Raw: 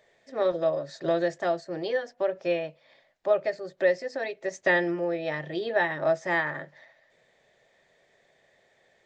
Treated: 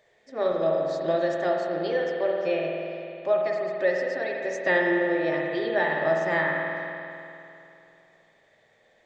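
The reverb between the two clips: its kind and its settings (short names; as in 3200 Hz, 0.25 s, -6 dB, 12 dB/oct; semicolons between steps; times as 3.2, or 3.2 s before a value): spring tank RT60 2.8 s, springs 49 ms, chirp 40 ms, DRR -0.5 dB; gain -1 dB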